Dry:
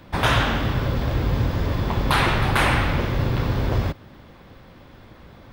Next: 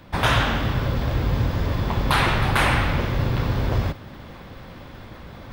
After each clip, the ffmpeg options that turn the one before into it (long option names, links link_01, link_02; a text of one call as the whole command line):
ffmpeg -i in.wav -af "equalizer=frequency=350:width=1.5:gain=-2,areverse,acompressor=mode=upward:threshold=-31dB:ratio=2.5,areverse" out.wav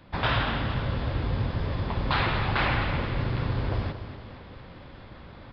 ffmpeg -i in.wav -af "aecho=1:1:231|462|693|924|1155|1386:0.282|0.147|0.0762|0.0396|0.0206|0.0107,aresample=11025,aresample=44100,volume=-6dB" out.wav